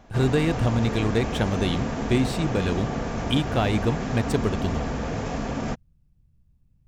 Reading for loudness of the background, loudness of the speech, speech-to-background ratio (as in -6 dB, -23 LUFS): -29.5 LUFS, -25.5 LUFS, 4.0 dB